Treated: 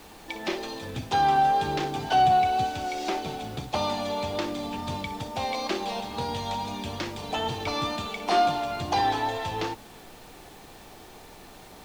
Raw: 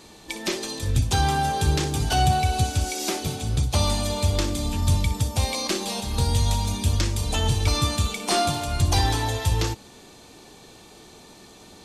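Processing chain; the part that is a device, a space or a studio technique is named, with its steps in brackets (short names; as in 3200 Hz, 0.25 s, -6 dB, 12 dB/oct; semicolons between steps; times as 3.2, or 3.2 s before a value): horn gramophone (BPF 230–3300 Hz; bell 780 Hz +6 dB 0.48 oct; wow and flutter 19 cents; pink noise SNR 22 dB); gain -1.5 dB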